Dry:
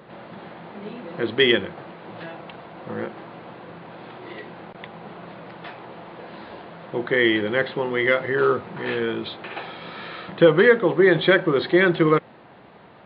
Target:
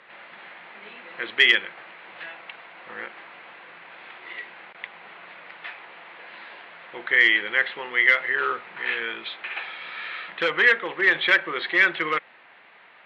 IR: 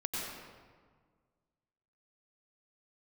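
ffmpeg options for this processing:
-af "volume=9dB,asoftclip=hard,volume=-9dB,bandpass=f=2.2k:t=q:w=2:csg=0,volume=7dB"

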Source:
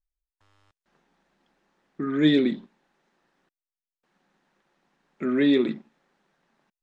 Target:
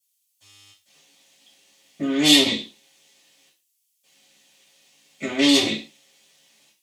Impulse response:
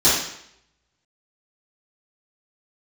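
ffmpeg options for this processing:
-filter_complex "[0:a]aeval=exprs='(tanh(14.1*val(0)+0.6)-tanh(0.6))/14.1':c=same,aexciter=amount=12.5:drive=6.1:freq=2.3k[a];[1:a]atrim=start_sample=2205,afade=t=out:st=0.36:d=0.01,atrim=end_sample=16317,asetrate=83790,aresample=44100[b];[a][b]afir=irnorm=-1:irlink=0,volume=-12.5dB"

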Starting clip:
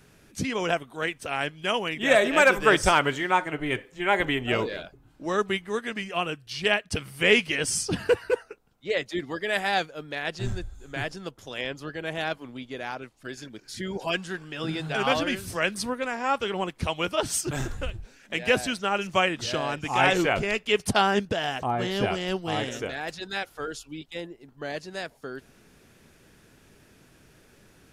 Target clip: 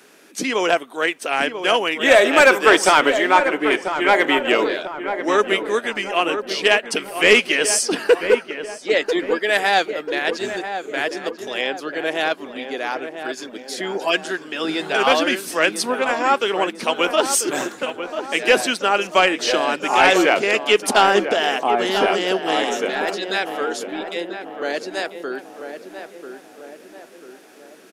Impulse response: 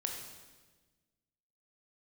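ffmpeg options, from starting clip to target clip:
-filter_complex "[0:a]highpass=f=270:w=0.5412,highpass=f=270:w=1.3066,asoftclip=type=tanh:threshold=-12.5dB,asplit=2[a][b];[b]adelay=991,lowpass=f=1.5k:p=1,volume=-8dB,asplit=2[c][d];[d]adelay=991,lowpass=f=1.5k:p=1,volume=0.53,asplit=2[e][f];[f]adelay=991,lowpass=f=1.5k:p=1,volume=0.53,asplit=2[g][h];[h]adelay=991,lowpass=f=1.5k:p=1,volume=0.53,asplit=2[i][j];[j]adelay=991,lowpass=f=1.5k:p=1,volume=0.53,asplit=2[k][l];[l]adelay=991,lowpass=f=1.5k:p=1,volume=0.53[m];[a][c][e][g][i][k][m]amix=inputs=7:normalize=0,volume=9dB"

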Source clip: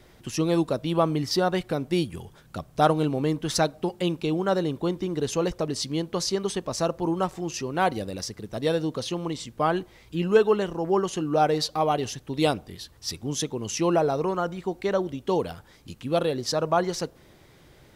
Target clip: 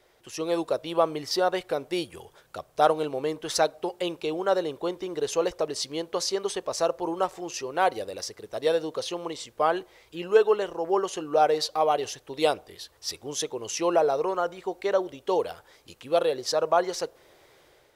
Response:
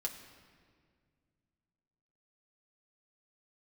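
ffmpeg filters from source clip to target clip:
-af "dynaudnorm=f=170:g=5:m=6dB,lowshelf=f=320:t=q:w=1.5:g=-11.5,volume=-6.5dB"

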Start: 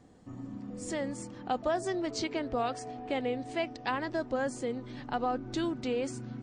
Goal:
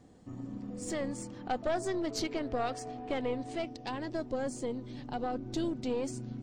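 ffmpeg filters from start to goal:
-af "asetnsamples=n=441:p=0,asendcmd='3.56 equalizer g -9.5',equalizer=f=1.4k:t=o:w=1.7:g=-3,aeval=exprs='(tanh(17.8*val(0)+0.55)-tanh(0.55))/17.8':c=same,volume=3dB"

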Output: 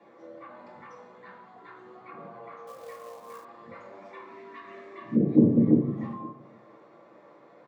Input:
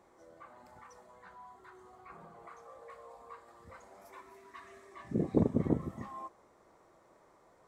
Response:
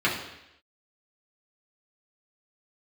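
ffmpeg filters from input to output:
-filter_complex "[0:a]highpass=110,lowpass=3.1k[a];[1:a]atrim=start_sample=2205,asetrate=70560,aresample=44100[b];[a][b]afir=irnorm=-1:irlink=0,acrossover=split=410[c][d];[d]acompressor=threshold=-42dB:ratio=5[e];[c][e]amix=inputs=2:normalize=0,asplit=2[f][g];[g]adelay=519,volume=-22dB,highshelf=f=4k:g=-11.7[h];[f][h]amix=inputs=2:normalize=0,asettb=1/sr,asplit=3[i][j][k];[i]atrim=end=2.674[l];[j]atrim=start=2.67:end=3.45,asetpts=PTS-STARTPTS,afade=t=in:d=0.004:c=qsin,afade=t=out:st=0.776:d=0.004:c=qsin,acrusher=bits=3:mode=log:mix=0:aa=0.000001[m];[k]atrim=start=3.446[n];[l][m]acrossfade=d=0.004:c1=hsin:c2=qsin[o];[o][n]acrossfade=d=0.004:c1=qsin:c2=hsin"

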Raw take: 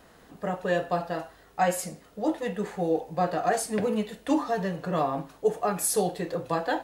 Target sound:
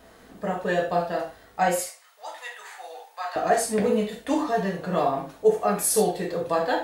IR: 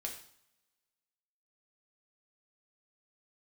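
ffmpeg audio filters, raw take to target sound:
-filter_complex "[0:a]asettb=1/sr,asplit=3[a][b][c];[a]atrim=end=1.814[d];[b]atrim=start=1.81:end=3.36,asetpts=PTS-STARTPTS,afade=t=in:d=0.004:c=qsin,afade=t=out:st=1.546:d=0.004:c=qsin,highpass=f=930:w=0.5412,highpass=f=930:w=1.3066[e];[c]atrim=start=3.356[f];[d][e]acrossfade=d=0.004:c1=hsin:c2=qsin[g];[g][f]acrossfade=d=0.004:c1=qsin:c2=hsin[h];[1:a]atrim=start_sample=2205,atrim=end_sample=4410[i];[h][i]afir=irnorm=-1:irlink=0,volume=4.5dB"

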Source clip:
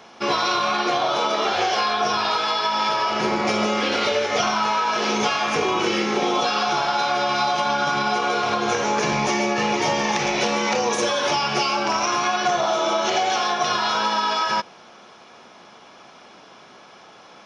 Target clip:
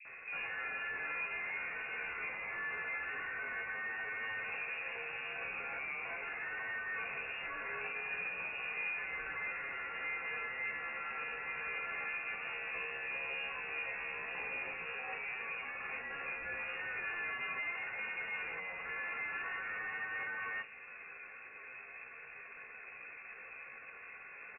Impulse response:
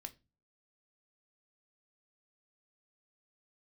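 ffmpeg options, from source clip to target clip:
-filter_complex "[0:a]acrossover=split=380[a][b];[a]acontrast=81[c];[c][b]amix=inputs=2:normalize=0,alimiter=limit=-16.5dB:level=0:latency=1:release=267,atempo=0.71,aresample=16000,asoftclip=type=tanh:threshold=-34dB,aresample=44100,acrossover=split=560[d][e];[e]adelay=50[f];[d][f]amix=inputs=2:normalize=0[g];[1:a]atrim=start_sample=2205[h];[g][h]afir=irnorm=-1:irlink=0,lowpass=f=2.4k:t=q:w=0.5098,lowpass=f=2.4k:t=q:w=0.6013,lowpass=f=2.4k:t=q:w=0.9,lowpass=f=2.4k:t=q:w=2.563,afreqshift=-2800,volume=1dB"

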